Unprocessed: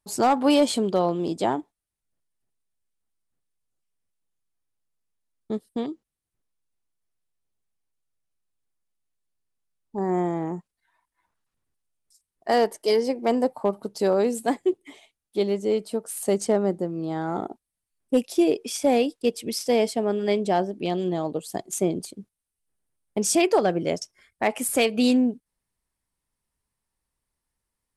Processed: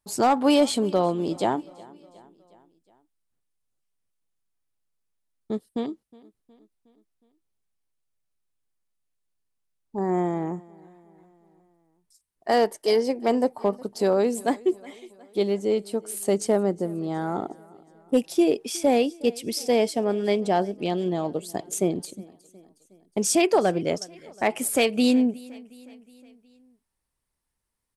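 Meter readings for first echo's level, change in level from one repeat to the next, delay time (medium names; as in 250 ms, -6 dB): -23.0 dB, -5.0 dB, 364 ms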